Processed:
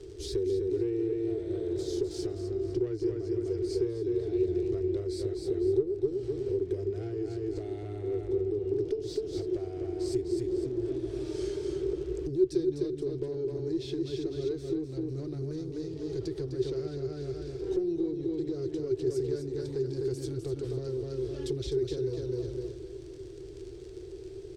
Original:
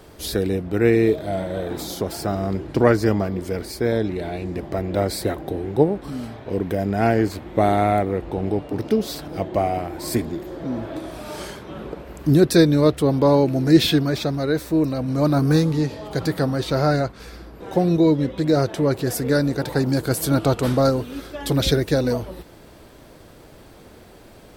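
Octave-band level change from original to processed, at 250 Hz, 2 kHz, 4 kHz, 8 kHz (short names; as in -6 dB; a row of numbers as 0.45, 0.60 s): -12.0 dB, under -25 dB, -17.0 dB, -16.5 dB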